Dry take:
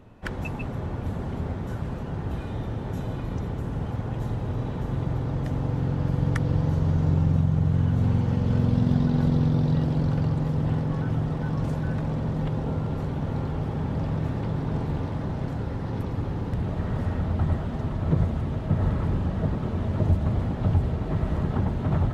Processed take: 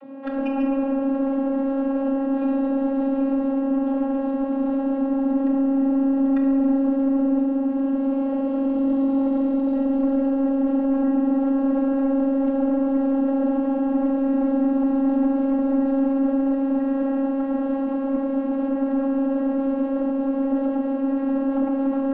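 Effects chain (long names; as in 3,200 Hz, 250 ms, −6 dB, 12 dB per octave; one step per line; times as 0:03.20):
drawn EQ curve 190 Hz 0 dB, 450 Hz +8 dB, 2,500 Hz 0 dB, 4,100 Hz −5 dB, 5,800 Hz −18 dB
in parallel at −2 dB: compressor whose output falls as the input rises −33 dBFS
on the sum: channel vocoder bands 32, saw 272 Hz
soft clipping −18.5 dBFS, distortion −17 dB
delay with a low-pass on its return 68 ms, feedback 64%, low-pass 3,700 Hz, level −11.5 dB
on a send at −2 dB: convolution reverb RT60 1.4 s, pre-delay 3 ms
on the sum: level −1.5 dB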